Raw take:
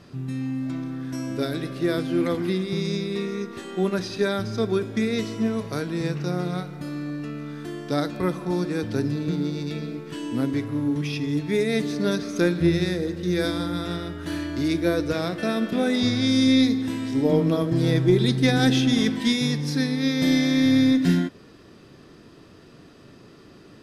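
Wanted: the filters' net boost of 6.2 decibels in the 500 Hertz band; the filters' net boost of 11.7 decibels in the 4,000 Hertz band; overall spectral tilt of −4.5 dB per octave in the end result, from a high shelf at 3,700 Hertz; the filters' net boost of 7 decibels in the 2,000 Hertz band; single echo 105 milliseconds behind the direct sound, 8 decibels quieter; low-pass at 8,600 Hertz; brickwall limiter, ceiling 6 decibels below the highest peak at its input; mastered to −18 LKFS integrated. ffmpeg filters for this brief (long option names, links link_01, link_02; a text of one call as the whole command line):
ffmpeg -i in.wav -af "lowpass=8600,equalizer=frequency=500:width_type=o:gain=7.5,equalizer=frequency=2000:width_type=o:gain=4,highshelf=frequency=3700:gain=8.5,equalizer=frequency=4000:width_type=o:gain=7.5,alimiter=limit=-7dB:level=0:latency=1,aecho=1:1:105:0.398,volume=2dB" out.wav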